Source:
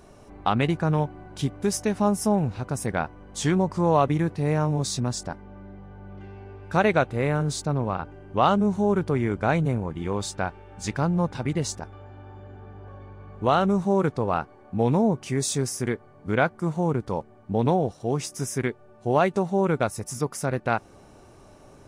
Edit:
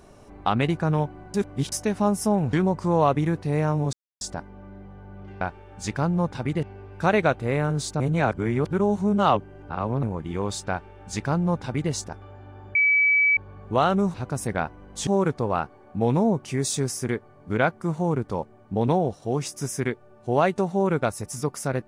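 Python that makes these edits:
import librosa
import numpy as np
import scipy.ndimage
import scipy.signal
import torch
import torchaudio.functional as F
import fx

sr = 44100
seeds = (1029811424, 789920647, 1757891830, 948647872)

y = fx.edit(x, sr, fx.reverse_span(start_s=1.34, length_s=0.38),
    fx.move(start_s=2.53, length_s=0.93, to_s=13.85),
    fx.silence(start_s=4.86, length_s=0.28),
    fx.reverse_span(start_s=7.71, length_s=2.03),
    fx.duplicate(start_s=10.41, length_s=1.22, to_s=6.34),
    fx.bleep(start_s=12.46, length_s=0.62, hz=2290.0, db=-16.0), tone=tone)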